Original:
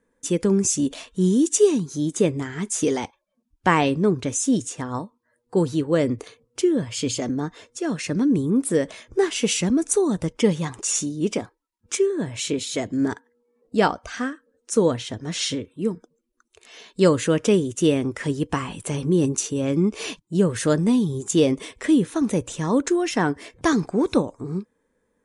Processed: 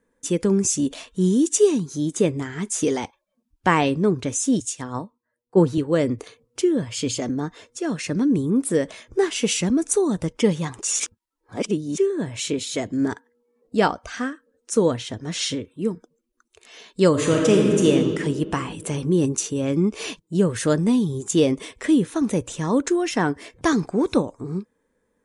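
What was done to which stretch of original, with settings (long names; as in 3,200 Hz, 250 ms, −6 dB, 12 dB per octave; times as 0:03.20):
0:04.60–0:05.78: multiband upward and downward expander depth 70%
0:11.00–0:11.98: reverse
0:17.10–0:17.88: thrown reverb, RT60 2.3 s, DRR −0.5 dB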